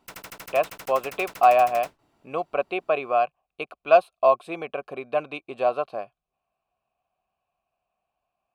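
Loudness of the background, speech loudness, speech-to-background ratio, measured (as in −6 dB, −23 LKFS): −41.0 LKFS, −24.0 LKFS, 17.0 dB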